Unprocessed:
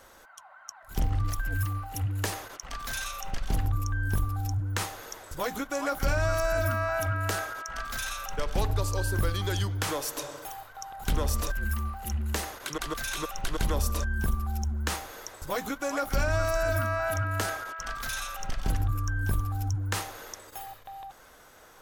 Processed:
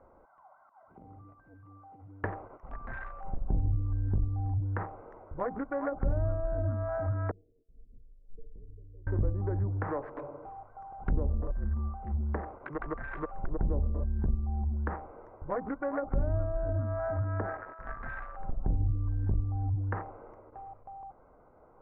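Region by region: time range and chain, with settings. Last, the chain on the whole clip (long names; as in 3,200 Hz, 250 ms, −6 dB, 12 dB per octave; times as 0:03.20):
0:00.67–0:02.24: high-pass filter 200 Hz + downward compressor, threshold −46 dBFS
0:07.31–0:09.07: inverse Chebyshev band-stop filter 1,100–3,000 Hz, stop band 70 dB + downward compressor 3 to 1, threshold −32 dBFS + tuned comb filter 460 Hz, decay 0.15 s, mix 90%
whole clip: adaptive Wiener filter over 25 samples; Chebyshev low-pass filter 1,900 Hz, order 4; treble cut that deepens with the level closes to 490 Hz, closed at −25 dBFS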